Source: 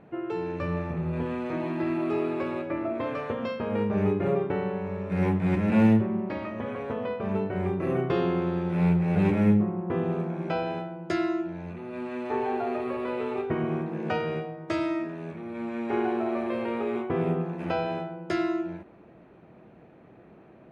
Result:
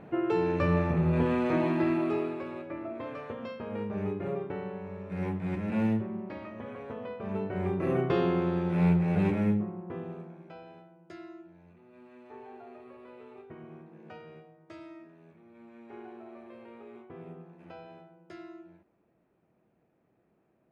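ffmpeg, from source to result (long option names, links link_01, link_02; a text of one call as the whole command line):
ffmpeg -i in.wav -af "volume=11dB,afade=type=out:start_time=1.56:duration=0.85:silence=0.251189,afade=type=in:start_time=7.14:duration=0.73:silence=0.446684,afade=type=out:start_time=8.92:duration=0.74:silence=0.446684,afade=type=out:start_time=9.66:duration=0.82:silence=0.281838" out.wav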